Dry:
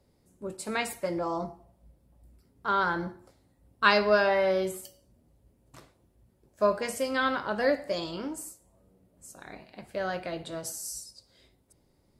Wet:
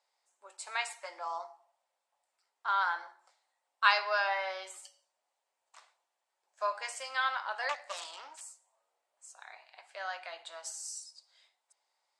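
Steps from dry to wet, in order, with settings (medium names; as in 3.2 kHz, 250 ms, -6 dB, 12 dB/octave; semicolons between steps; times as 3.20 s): 7.69–8.41 s: self-modulated delay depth 0.39 ms; elliptic band-pass 800–8100 Hz, stop band 60 dB; trim -2 dB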